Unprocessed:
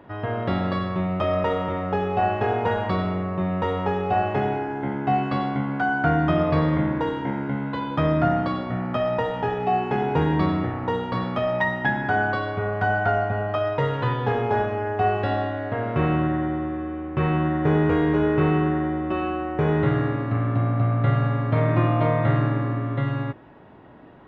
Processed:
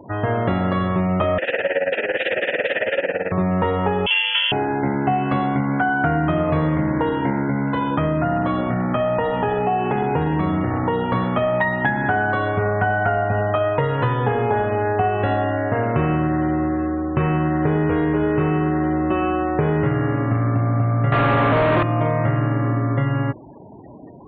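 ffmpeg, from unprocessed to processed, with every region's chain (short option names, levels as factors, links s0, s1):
-filter_complex "[0:a]asettb=1/sr,asplit=3[s0][s1][s2];[s0]atrim=end=1.384[s3];[s1]atrim=start=1.38:end=3.32,asetpts=PTS-STARTPTS,afade=t=in:d=0.004:c=qsin,afade=t=out:st=1.936:d=0.004:c=qsin,aeval=exprs='0.299*sin(PI/2*7.08*val(0)/0.299)':c=same,tremolo=f=18:d=0.81,asplit=3[s4][s5][s6];[s4]bandpass=f=530:t=q:w=8,volume=1[s7];[s5]bandpass=f=1840:t=q:w=8,volume=0.501[s8];[s6]bandpass=f=2480:t=q:w=8,volume=0.355[s9];[s7][s8][s9]amix=inputs=3:normalize=0[s10];[s2]atrim=start=3.316[s11];[s3][s10]acrossfade=d=0.004:c1=hsin:c2=qsin[s12];[s12][s11]acrossfade=d=0.004:c1=qsin:c2=hsin,asettb=1/sr,asplit=3[s13][s14][s15];[s13]atrim=end=4.064[s16];[s14]atrim=start=4.06:end=4.52,asetpts=PTS-STARTPTS,afade=t=in:d=0.004:c=qsin,afade=t=out:st=0.456:d=0.004:c=qsin,equalizer=f=2200:t=o:w=0.39:g=3.5,lowpass=f=3000:t=q:w=0.5098,lowpass=f=3000:t=q:w=0.6013,lowpass=f=3000:t=q:w=0.9,lowpass=f=3000:t=q:w=2.563,afreqshift=-3500[s17];[s15]atrim=start=4.516[s18];[s16][s17]acrossfade=d=0.004:c1=hsin:c2=qsin[s19];[s19][s18]acrossfade=d=0.004:c1=qsin:c2=hsin,asettb=1/sr,asplit=3[s20][s21][s22];[s20]atrim=end=7.444[s23];[s21]atrim=start=7.44:end=11.04,asetpts=PTS-STARTPTS,afade=t=in:d=0.004:c=qsin,afade=t=out:st=3.596:d=0.004:c=qsin,acompressor=threshold=0.0631:ratio=2:attack=3.2:release=140:knee=1:detection=peak,aecho=1:1:480:0.168,atrim=end_sample=158760[s24];[s22]atrim=start=11.036[s25];[s23][s24]acrossfade=d=0.004:c1=hsin:c2=qsin[s26];[s26][s25]acrossfade=d=0.004:c1=qsin:c2=hsin,asettb=1/sr,asplit=3[s27][s28][s29];[s27]atrim=end=21.124[s30];[s28]atrim=start=21.12:end=21.83,asetpts=PTS-STARTPTS,afade=t=in:d=0.004:c=qsin,afade=t=out:st=0.706:d=0.004:c=qsin,asplit=2[s31][s32];[s32]highpass=f=720:p=1,volume=70.8,asoftclip=type=tanh:threshold=0.447[s33];[s31][s33]amix=inputs=2:normalize=0,lowpass=f=1500:p=1,volume=0.501,acrusher=bits=9:mode=log:mix=0:aa=0.000001[s34];[s29]atrim=start=21.826[s35];[s30][s34]acrossfade=d=0.004:c1=hsin:c2=qsin[s36];[s36][s35]acrossfade=d=0.004:c1=qsin:c2=hsin,lowpass=f=3300:w=0.5412,lowpass=f=3300:w=1.3066,afftfilt=real='re*gte(hypot(re,im),0.00891)':imag='im*gte(hypot(re,im),0.00891)':win_size=1024:overlap=0.75,acompressor=threshold=0.0631:ratio=6,volume=2.51"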